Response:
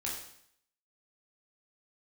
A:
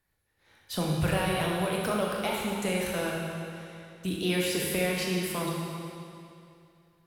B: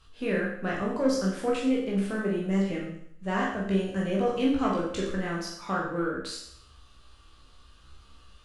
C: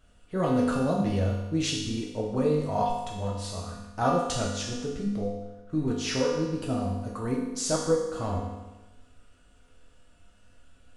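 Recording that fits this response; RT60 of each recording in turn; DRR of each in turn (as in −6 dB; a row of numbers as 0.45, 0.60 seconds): B; 2.6, 0.65, 1.1 seconds; −2.5, −4.5, −4.5 decibels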